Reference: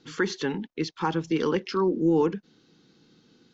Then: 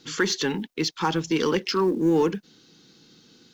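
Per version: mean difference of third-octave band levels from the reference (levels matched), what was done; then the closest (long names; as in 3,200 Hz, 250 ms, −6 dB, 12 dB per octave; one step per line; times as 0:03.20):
3.5 dB: high-shelf EQ 3,300 Hz +11.5 dB
in parallel at −9 dB: hard clipping −26.5 dBFS, distortion −6 dB
on the sum: log-companded quantiser 8 bits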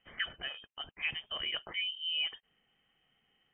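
11.5 dB: high-pass filter 520 Hz 12 dB per octave
voice inversion scrambler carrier 3,400 Hz
level −6.5 dB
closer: first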